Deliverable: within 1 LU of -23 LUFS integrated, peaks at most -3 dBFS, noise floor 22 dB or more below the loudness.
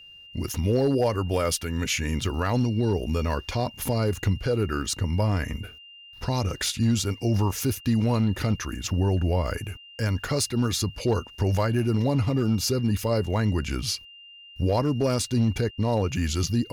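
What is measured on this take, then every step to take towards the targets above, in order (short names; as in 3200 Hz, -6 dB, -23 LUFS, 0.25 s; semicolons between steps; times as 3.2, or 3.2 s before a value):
clipped 0.6%; flat tops at -15.5 dBFS; steady tone 2800 Hz; tone level -45 dBFS; loudness -25.5 LUFS; peak -15.5 dBFS; loudness target -23.0 LUFS
-> clip repair -15.5 dBFS; notch 2800 Hz, Q 30; gain +2.5 dB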